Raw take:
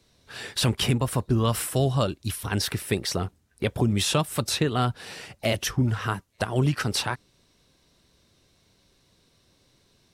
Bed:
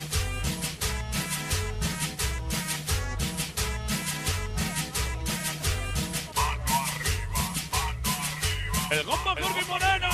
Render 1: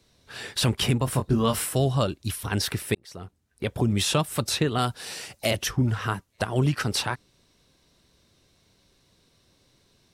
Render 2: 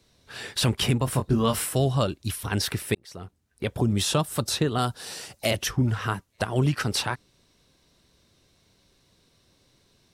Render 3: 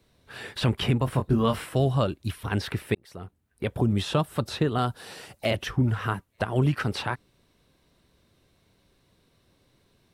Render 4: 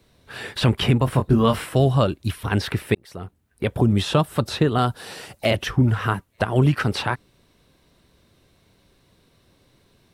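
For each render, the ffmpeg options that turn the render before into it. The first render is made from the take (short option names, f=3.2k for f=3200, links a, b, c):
-filter_complex "[0:a]asettb=1/sr,asplit=3[a][b][c];[a]atrim=end=1.054[d];[b]atrim=start=1.05:end=1.73,asetpts=PTS-STARTPTS,afade=t=in:d=0.004:c=qsin,afade=t=out:st=0.676:d=0.004:c=qsin,asplit=2[e][f];[f]adelay=22,volume=-5.5dB[g];[e][g]amix=inputs=2:normalize=0,atrim=end_sample=29988[h];[c]atrim=start=1.726[i];[d][h]acrossfade=d=0.004:c1=hsin:c2=qsin[j];[j][i]acrossfade=d=0.004:c1=qsin:c2=hsin,asettb=1/sr,asplit=3[k][l][m];[k]atrim=end=4.784[n];[l]atrim=start=4.78:end=5.51,asetpts=PTS-STARTPTS,afade=t=in:d=0.004:c=qsin,afade=t=out:st=0.726:d=0.004:c=qsin,bass=f=250:g=-4,treble=f=4k:g=9[o];[m]atrim=start=5.506[p];[n][o]acrossfade=d=0.004:c1=hsin:c2=qsin[q];[q][p]acrossfade=d=0.004:c1=qsin:c2=hsin,asplit=2[r][s];[r]atrim=end=2.95,asetpts=PTS-STARTPTS,afade=t=out:st=2.946:d=0.004:c=hsin[t];[s]atrim=start=2.95,asetpts=PTS-STARTPTS,afade=t=in:d=0.97[u];[t][u]concat=n=2:v=0:a=1"
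-filter_complex "[0:a]asettb=1/sr,asplit=3[a][b][c];[a]atrim=end=3.784[d];[b]atrim=start=3.78:end=5.37,asetpts=PTS-STARTPTS,afade=t=in:d=0.004:c=qsin,afade=t=out:st=1.586:d=0.004:c=qsin,equalizer=f=2.3k:w=2.1:g=-5.5[e];[c]atrim=start=5.366[f];[d][e]acrossfade=d=0.004:c1=hsin:c2=qsin[g];[g][f]acrossfade=d=0.004:c1=qsin:c2=hsin"
-filter_complex "[0:a]acrossover=split=6100[a][b];[b]acompressor=threshold=-47dB:ratio=4:attack=1:release=60[c];[a][c]amix=inputs=2:normalize=0,equalizer=f=5.8k:w=0.95:g=-9"
-af "volume=5.5dB"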